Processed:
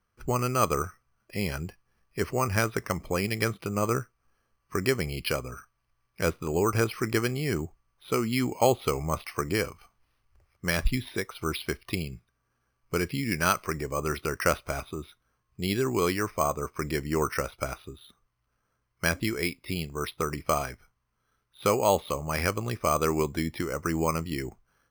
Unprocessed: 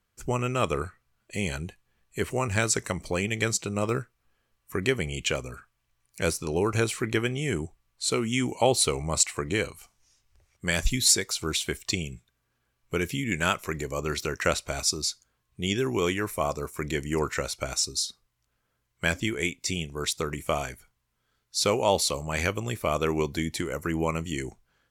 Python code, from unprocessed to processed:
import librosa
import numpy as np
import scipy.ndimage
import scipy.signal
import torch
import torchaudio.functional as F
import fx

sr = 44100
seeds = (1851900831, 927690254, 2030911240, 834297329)

y = fx.lowpass(x, sr, hz=3300.0, slope=6)
y = fx.peak_eq(y, sr, hz=1200.0, db=6.0, octaves=0.37)
y = np.repeat(scipy.signal.resample_poly(y, 1, 6), 6)[:len(y)]